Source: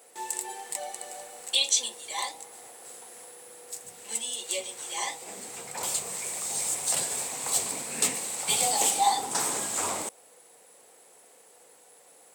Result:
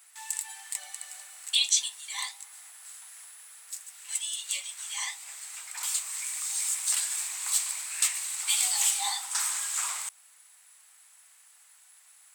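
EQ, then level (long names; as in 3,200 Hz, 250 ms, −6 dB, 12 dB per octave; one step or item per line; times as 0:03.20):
high-pass filter 1,200 Hz 24 dB per octave
0.0 dB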